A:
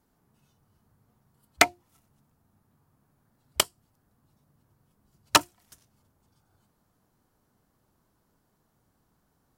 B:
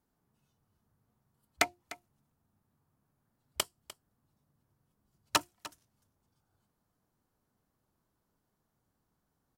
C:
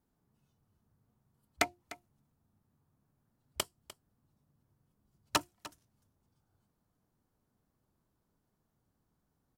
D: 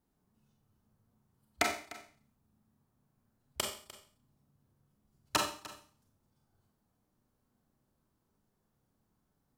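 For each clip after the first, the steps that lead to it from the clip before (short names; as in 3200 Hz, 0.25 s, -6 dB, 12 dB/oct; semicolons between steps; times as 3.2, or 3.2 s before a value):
echo 0.3 s -17.5 dB; gain -9 dB
low shelf 500 Hz +5.5 dB; gain -3 dB
reverb RT60 0.45 s, pre-delay 29 ms, DRR 1.5 dB; gain -1 dB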